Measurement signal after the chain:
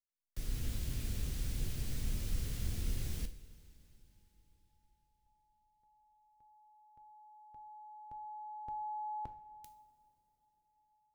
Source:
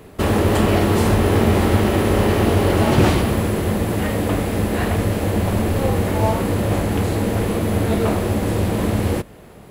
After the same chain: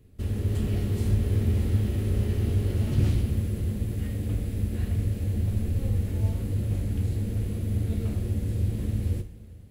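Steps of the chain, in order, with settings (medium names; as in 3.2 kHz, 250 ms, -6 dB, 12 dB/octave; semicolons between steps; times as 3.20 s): amplifier tone stack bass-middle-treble 10-0-1; level rider gain up to 3 dB; two-slope reverb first 0.43 s, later 4.4 s, from -18 dB, DRR 7 dB; trim +1 dB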